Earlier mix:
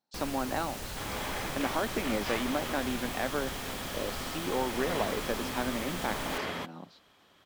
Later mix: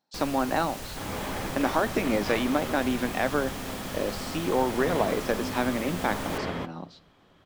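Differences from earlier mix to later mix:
speech +4.5 dB; second sound: add tilt -2.5 dB/oct; reverb: on, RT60 0.55 s

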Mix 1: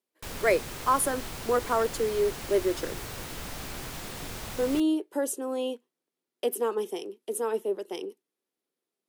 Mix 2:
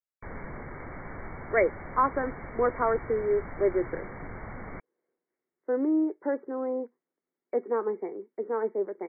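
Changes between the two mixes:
speech: entry +1.10 s; master: add brick-wall FIR low-pass 2300 Hz

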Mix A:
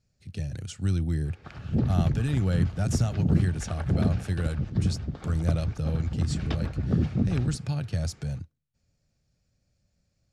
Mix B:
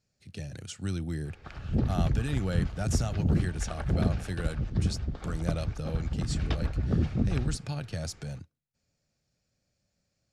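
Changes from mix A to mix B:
background: remove HPF 130 Hz 12 dB/oct; master: add low shelf 140 Hz -12 dB

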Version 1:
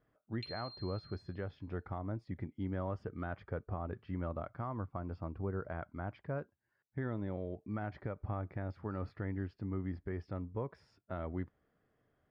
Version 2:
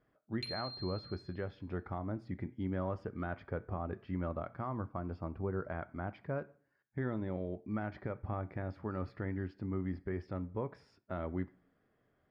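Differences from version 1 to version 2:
background: remove band-pass 2900 Hz, Q 1.5; reverb: on, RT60 0.50 s

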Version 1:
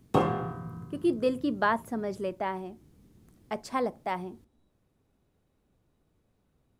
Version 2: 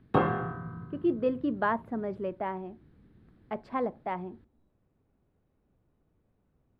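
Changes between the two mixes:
background: add fifteen-band EQ 1600 Hz +10 dB, 4000 Hz +7 dB, 10000 Hz +10 dB; master: add air absorption 450 m

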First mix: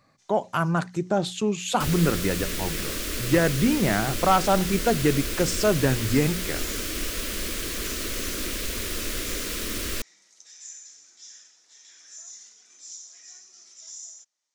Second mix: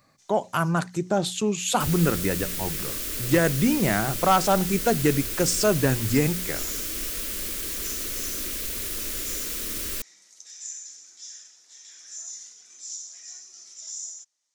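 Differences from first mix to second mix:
second sound -6.0 dB; master: add high shelf 7400 Hz +11.5 dB

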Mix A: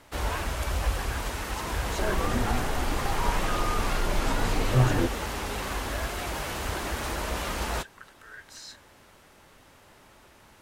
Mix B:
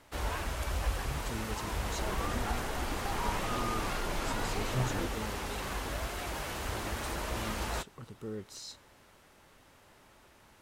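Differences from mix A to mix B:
speech: remove resonant high-pass 1600 Hz, resonance Q 16; first sound -5.0 dB; second sound -11.0 dB

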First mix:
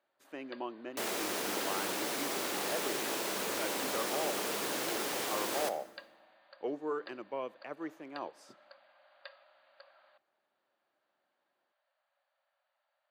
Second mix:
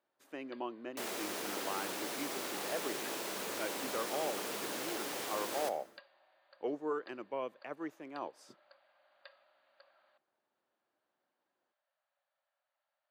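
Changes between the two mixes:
speech: send off; first sound -6.0 dB; second sound -4.5 dB

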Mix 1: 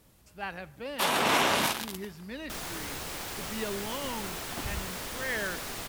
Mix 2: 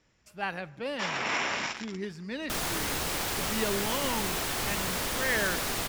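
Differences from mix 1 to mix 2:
speech +4.0 dB; first sound: add rippled Chebyshev low-pass 7400 Hz, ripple 9 dB; second sound +6.5 dB

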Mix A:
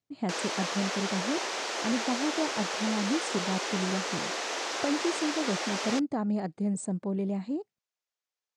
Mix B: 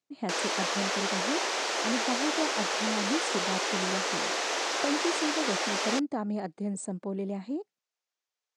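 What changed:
background +3.0 dB; master: add HPF 220 Hz 12 dB/oct

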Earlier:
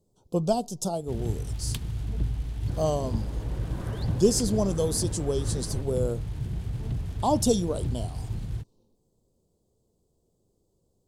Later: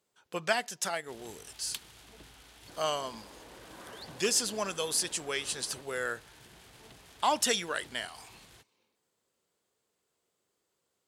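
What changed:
speech: remove Butterworth band-stop 1900 Hz, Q 0.53; first sound: add bell 110 Hz -11 dB 1.8 oct; master: add HPF 1300 Hz 6 dB/oct

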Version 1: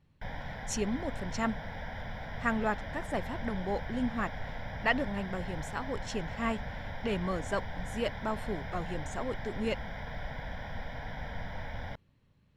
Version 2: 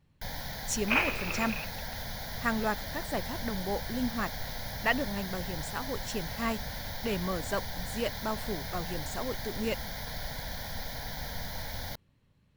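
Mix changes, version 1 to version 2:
first sound: remove polynomial smoothing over 25 samples; second sound: unmuted; master: add high shelf 8200 Hz +11 dB

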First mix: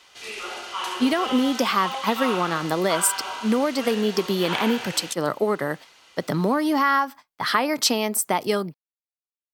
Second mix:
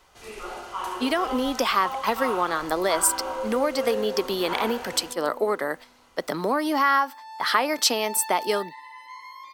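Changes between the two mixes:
speech: add HPF 340 Hz 12 dB/oct; first sound: remove weighting filter D; second sound: unmuted

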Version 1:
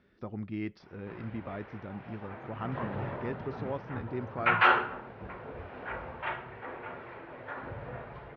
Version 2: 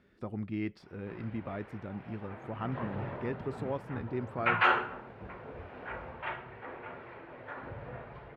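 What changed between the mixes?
background -3.0 dB; master: remove Chebyshev low-pass 6200 Hz, order 8

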